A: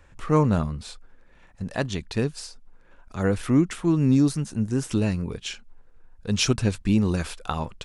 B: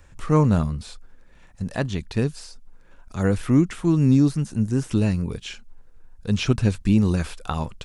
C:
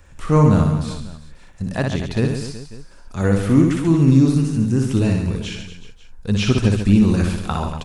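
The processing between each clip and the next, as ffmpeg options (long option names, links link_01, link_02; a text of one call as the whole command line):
ffmpeg -i in.wav -filter_complex "[0:a]bass=frequency=250:gain=4,treble=frequency=4000:gain=7,acrossover=split=3200[link_01][link_02];[link_02]acompressor=threshold=-41dB:ratio=4:attack=1:release=60[link_03];[link_01][link_03]amix=inputs=2:normalize=0" out.wav
ffmpeg -i in.wav -af "aecho=1:1:60|138|239.4|371.2|542.6:0.631|0.398|0.251|0.158|0.1,volume=2.5dB" out.wav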